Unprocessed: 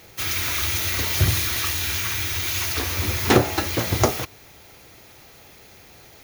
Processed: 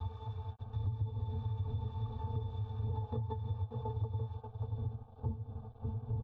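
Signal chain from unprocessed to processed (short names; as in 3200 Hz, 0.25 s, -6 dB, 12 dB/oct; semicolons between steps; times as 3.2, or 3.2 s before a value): slices in reverse order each 0.104 s, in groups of 7; wind noise 240 Hz -28 dBFS; octave resonator A, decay 0.15 s; echo 0.584 s -11 dB; crossover distortion -52 dBFS; tape spacing loss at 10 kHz 29 dB; fixed phaser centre 820 Hz, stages 4; compressor 6:1, threshold -36 dBFS, peak gain reduction 13.5 dB; high shelf 3700 Hz -10 dB; comb 2.6 ms, depth 70%; three-band squash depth 40%; gain +2.5 dB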